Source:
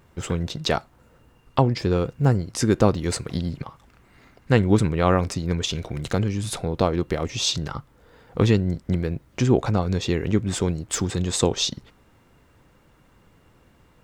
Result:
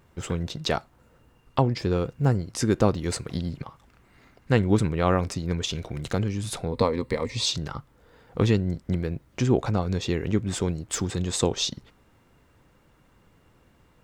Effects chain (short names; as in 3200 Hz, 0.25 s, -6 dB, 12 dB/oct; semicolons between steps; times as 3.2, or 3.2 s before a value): 6.72–7.46 ripple EQ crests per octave 0.96, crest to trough 11 dB; gain -3 dB